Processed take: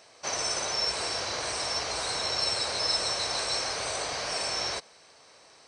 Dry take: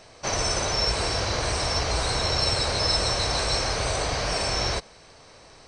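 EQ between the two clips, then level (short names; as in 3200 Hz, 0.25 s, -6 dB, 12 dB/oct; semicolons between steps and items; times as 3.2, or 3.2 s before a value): HPF 460 Hz 6 dB/oct; high shelf 7500 Hz +5 dB; -4.5 dB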